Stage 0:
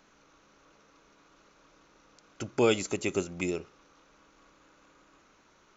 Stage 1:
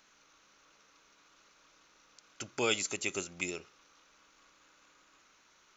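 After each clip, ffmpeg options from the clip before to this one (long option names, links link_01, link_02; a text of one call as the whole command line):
ffmpeg -i in.wav -af "tiltshelf=frequency=1100:gain=-7,volume=-4dB" out.wav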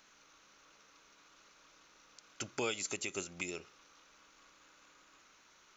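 ffmpeg -i in.wav -af "alimiter=level_in=1dB:limit=-24dB:level=0:latency=1:release=275,volume=-1dB,volume=1dB" out.wav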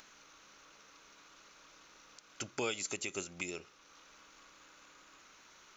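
ffmpeg -i in.wav -af "acompressor=mode=upward:threshold=-53dB:ratio=2.5" out.wav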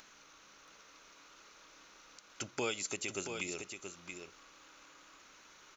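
ffmpeg -i in.wav -af "aecho=1:1:678:0.447" out.wav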